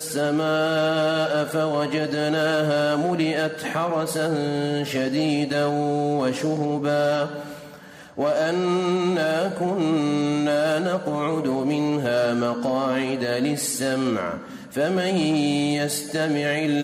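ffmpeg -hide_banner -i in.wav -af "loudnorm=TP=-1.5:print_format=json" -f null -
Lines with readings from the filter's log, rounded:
"input_i" : "-23.0",
"input_tp" : "-11.2",
"input_lra" : "1.3",
"input_thresh" : "-33.2",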